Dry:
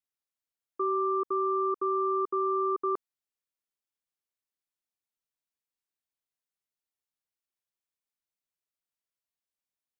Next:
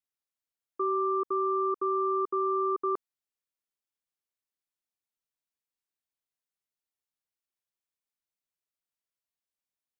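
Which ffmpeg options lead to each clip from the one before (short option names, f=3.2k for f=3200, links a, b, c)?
-af anull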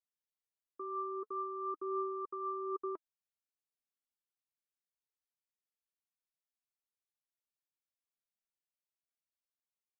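-af "flanger=delay=1.4:depth=3.4:regen=43:speed=0.42:shape=triangular,volume=-6.5dB"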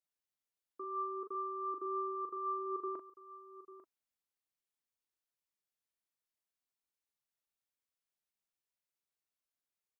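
-filter_complex "[0:a]asplit=2[a][b];[b]adelay=40,volume=-6.5dB[c];[a][c]amix=inputs=2:normalize=0,aecho=1:1:845:0.178,volume=-1dB"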